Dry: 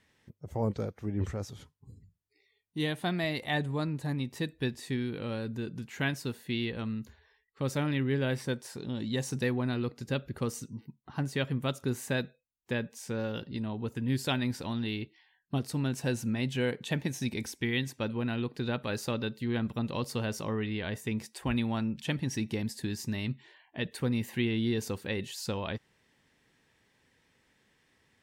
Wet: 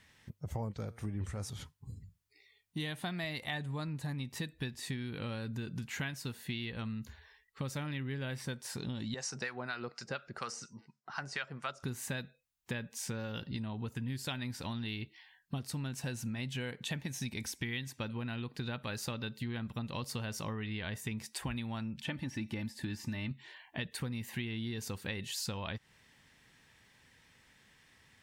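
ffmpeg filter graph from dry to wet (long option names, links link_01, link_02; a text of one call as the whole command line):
ffmpeg -i in.wav -filter_complex "[0:a]asettb=1/sr,asplit=3[link_01][link_02][link_03];[link_01]atrim=end=0.884[link_04];[link_02]atrim=start=0.88:end=1.5,asetpts=PTS-STARTPTS,afade=type=in:duration=0.004:curve=qsin,afade=type=out:start_time=0.616:duration=0.004:curve=qsin,equalizer=frequency=9200:width=3.6:gain=13.5,bandreject=frequency=116:width_type=h:width=4,bandreject=frequency=232:width_type=h:width=4,bandreject=frequency=348:width_type=h:width=4,bandreject=frequency=464:width_type=h:width=4,bandreject=frequency=580:width_type=h:width=4,bandreject=frequency=696:width_type=h:width=4,bandreject=frequency=812:width_type=h:width=4,bandreject=frequency=928:width_type=h:width=4,bandreject=frequency=1044:width_type=h:width=4,bandreject=frequency=1160:width_type=h:width=4,bandreject=frequency=1276:width_type=h:width=4,bandreject=frequency=1392:width_type=h:width=4,bandreject=frequency=1508:width_type=h:width=4,bandreject=frequency=1624:width_type=h:width=4,bandreject=frequency=1740:width_type=h:width=4,bandreject=frequency=1856:width_type=h:width=4,bandreject=frequency=1972:width_type=h:width=4,bandreject=frequency=2088:width_type=h:width=4,bandreject=frequency=2204:width_type=h:width=4,bandreject=frequency=2320:width_type=h:width=4,bandreject=frequency=2436:width_type=h:width=4,bandreject=frequency=2552:width_type=h:width=4,bandreject=frequency=2668:width_type=h:width=4,bandreject=frequency=2784:width_type=h:width=4,bandreject=frequency=2900:width_type=h:width=4,bandreject=frequency=3016:width_type=h:width=4,bandreject=frequency=3132:width_type=h:width=4,bandreject=frequency=3248:width_type=h:width=4,bandreject=frequency=3364:width_type=h:width=4,bandreject=frequency=3480:width_type=h:width=4,bandreject=frequency=3596:width_type=h:width=4,bandreject=frequency=3712:width_type=h:width=4,bandreject=frequency=3828:width_type=h:width=4,bandreject=frequency=3944:width_type=h:width=4,bandreject=frequency=4060:width_type=h:width=4,bandreject=frequency=4176:width_type=h:width=4,bandreject=frequency=4292:width_type=h:width=4,bandreject=frequency=4408:width_type=h:width=4,bandreject=frequency=4524:width_type=h:width=4[link_05];[link_03]atrim=start=1.496[link_06];[link_04][link_05]acrossfade=duration=0.004:curve1=hsin:curve2=qsin[link_07];[link_07][link_06]acrossfade=duration=0.004:curve1=qsin:curve2=hsin,asettb=1/sr,asplit=3[link_08][link_09][link_10];[link_08]atrim=end=9.144[link_11];[link_09]atrim=start=9.14:end=11.83,asetpts=PTS-STARTPTS,afade=type=in:duration=0.004:curve=qsin,afade=type=out:start_time=2.686:duration=0.004:curve=qsin,acrossover=split=870[link_12][link_13];[link_12]aeval=exprs='val(0)*(1-0.7/2+0.7/2*cos(2*PI*4.2*n/s))':channel_layout=same[link_14];[link_13]aeval=exprs='val(0)*(1-0.7/2-0.7/2*cos(2*PI*4.2*n/s))':channel_layout=same[link_15];[link_14][link_15]amix=inputs=2:normalize=0,highpass=270,equalizer=frequency=270:width_type=q:width=4:gain=-9,equalizer=frequency=690:width_type=q:width=4:gain=5,equalizer=frequency=1400:width_type=q:width=4:gain=8,equalizer=frequency=3400:width_type=q:width=4:gain=-7,equalizer=frequency=5200:width_type=q:width=4:gain=8,lowpass=frequency=8000:width=0.5412,lowpass=frequency=8000:width=1.3066[link_16];[link_10]atrim=start=11.826[link_17];[link_11][link_16]acrossfade=duration=0.004:curve1=hsin:curve2=qsin[link_18];[link_18][link_17]acrossfade=duration=0.004:curve1=qsin:curve2=hsin,asettb=1/sr,asplit=3[link_19][link_20][link_21];[link_19]atrim=end=22.014[link_22];[link_20]atrim=start=22.01:end=23.31,asetpts=PTS-STARTPTS,afade=type=in:duration=0.004:curve=qsin,afade=type=out:start_time=1.296:duration=0.004:curve=qsin,acrossover=split=2900[link_23][link_24];[link_24]acompressor=threshold=-53dB:ratio=4:attack=1:release=60[link_25];[link_23][link_25]amix=inputs=2:normalize=0,aecho=1:1:3.4:0.45,atrim=end_sample=57330[link_26];[link_21]atrim=start=23.306[link_27];[link_22][link_26]acrossfade=duration=0.004:curve1=hsin:curve2=qsin[link_28];[link_28][link_27]acrossfade=duration=0.004:curve1=qsin:curve2=hsin,equalizer=frequency=390:width_type=o:width=1.7:gain=-8,acompressor=threshold=-42dB:ratio=6,volume=6.5dB" out.wav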